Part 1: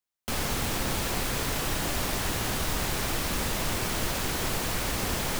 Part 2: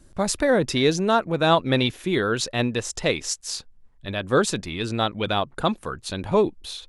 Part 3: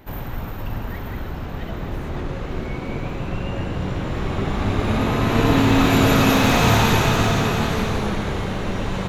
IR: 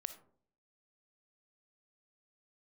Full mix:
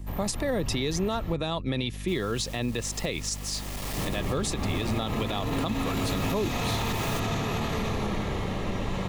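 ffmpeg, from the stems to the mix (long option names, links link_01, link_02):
-filter_complex "[0:a]asoftclip=type=hard:threshold=-32dB,adelay=1800,volume=2.5dB[link_01];[1:a]aeval=exprs='val(0)+0.0178*(sin(2*PI*50*n/s)+sin(2*PI*2*50*n/s)/2+sin(2*PI*3*50*n/s)/3+sin(2*PI*4*50*n/s)/4+sin(2*PI*5*50*n/s)/5)':channel_layout=same,volume=-1dB,asplit=2[link_02][link_03];[2:a]alimiter=limit=-14.5dB:level=0:latency=1:release=23,aeval=exprs='sgn(val(0))*max(abs(val(0))-0.00282,0)':channel_layout=same,volume=-5dB,asplit=3[link_04][link_05][link_06];[link_04]atrim=end=1.34,asetpts=PTS-STARTPTS,afade=type=out:start_time=1.336:duration=0.004:curve=hsin[link_07];[link_05]atrim=start=1.34:end=3.97,asetpts=PTS-STARTPTS,volume=0[link_08];[link_06]atrim=start=3.97,asetpts=PTS-STARTPTS,afade=type=in:duration=0.004:curve=hsin[link_09];[link_07][link_08][link_09]concat=n=3:v=0:a=1[link_10];[link_03]apad=whole_len=317314[link_11];[link_01][link_11]sidechaincompress=threshold=-32dB:ratio=12:attack=6.7:release=760[link_12];[link_12][link_02][link_10]amix=inputs=3:normalize=0,acrossover=split=200|3000[link_13][link_14][link_15];[link_14]acompressor=threshold=-24dB:ratio=3[link_16];[link_13][link_16][link_15]amix=inputs=3:normalize=0,asuperstop=centerf=1500:order=4:qfactor=7.7,alimiter=limit=-18.5dB:level=0:latency=1:release=67"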